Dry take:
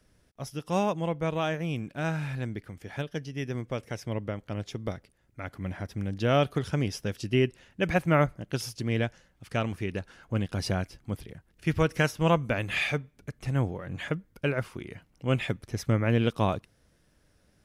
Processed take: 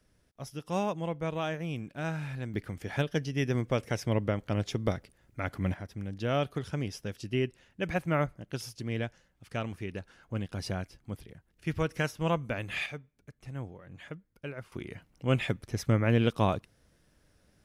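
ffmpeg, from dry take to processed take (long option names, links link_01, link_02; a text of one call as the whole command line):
ffmpeg -i in.wav -af "asetnsamples=nb_out_samples=441:pad=0,asendcmd='2.54 volume volume 4dB;5.74 volume volume -5.5dB;12.86 volume volume -12dB;14.72 volume volume -0.5dB',volume=-4dB" out.wav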